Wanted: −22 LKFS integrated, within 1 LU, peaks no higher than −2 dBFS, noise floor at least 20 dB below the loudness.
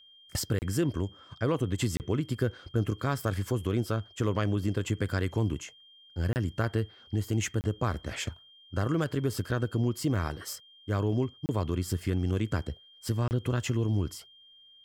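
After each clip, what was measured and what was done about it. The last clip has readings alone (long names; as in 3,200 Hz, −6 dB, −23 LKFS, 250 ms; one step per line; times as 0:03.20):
number of dropouts 6; longest dropout 29 ms; interfering tone 3,200 Hz; level of the tone −54 dBFS; integrated loudness −31.0 LKFS; sample peak −15.0 dBFS; target loudness −22.0 LKFS
→ repair the gap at 0:00.59/0:01.97/0:06.33/0:07.61/0:11.46/0:13.28, 29 ms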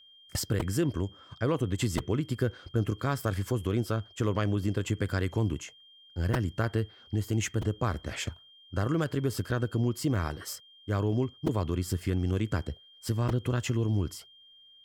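number of dropouts 0; interfering tone 3,200 Hz; level of the tone −54 dBFS
→ notch filter 3,200 Hz, Q 30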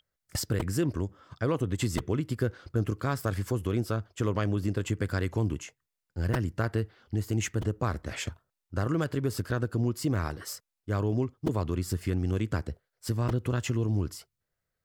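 interfering tone none found; integrated loudness −31.0 LKFS; sample peak −15.0 dBFS; target loudness −22.0 LKFS
→ level +9 dB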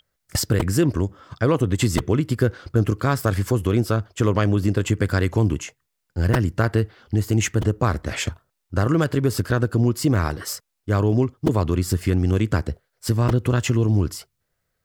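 integrated loudness −22.0 LKFS; sample peak −6.0 dBFS; background noise floor −77 dBFS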